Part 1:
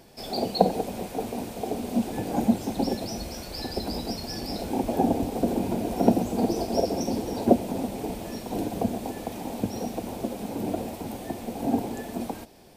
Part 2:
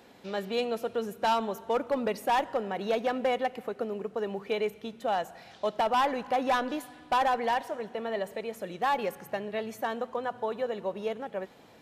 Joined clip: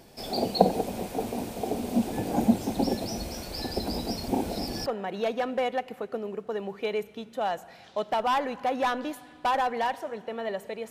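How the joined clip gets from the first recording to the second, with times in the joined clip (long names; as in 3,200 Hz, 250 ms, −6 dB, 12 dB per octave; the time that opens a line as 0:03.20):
part 1
0:04.28–0:04.86: reverse
0:04.86: continue with part 2 from 0:02.53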